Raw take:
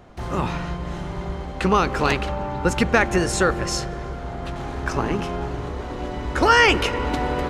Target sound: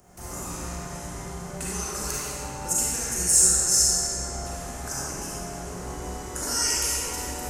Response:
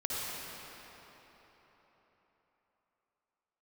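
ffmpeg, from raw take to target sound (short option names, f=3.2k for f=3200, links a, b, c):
-filter_complex "[0:a]acrossover=split=100|4700[a][b][c];[a]alimiter=level_in=6.5dB:limit=-24dB:level=0:latency=1:release=255,volume=-6.5dB[d];[b]acompressor=threshold=-30dB:ratio=6[e];[d][e][c]amix=inputs=3:normalize=0,aexciter=amount=8.6:drive=7.4:freq=5.6k[f];[1:a]atrim=start_sample=2205,asetrate=70560,aresample=44100[g];[f][g]afir=irnorm=-1:irlink=0,volume=-5dB"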